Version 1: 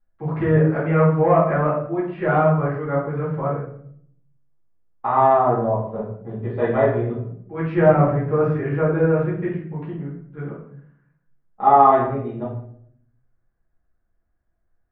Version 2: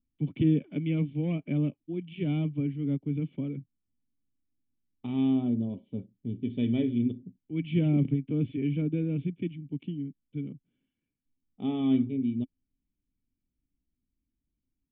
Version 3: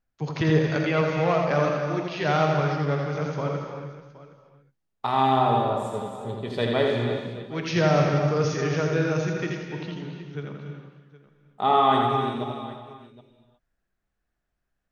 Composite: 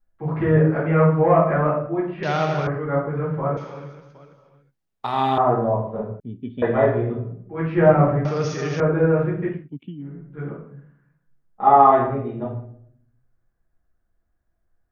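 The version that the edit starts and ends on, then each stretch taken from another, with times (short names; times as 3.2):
1
2.23–2.67 from 3
3.57–5.38 from 3
6.2–6.62 from 2
8.25–8.8 from 3
9.58–10.1 from 2, crossfade 0.24 s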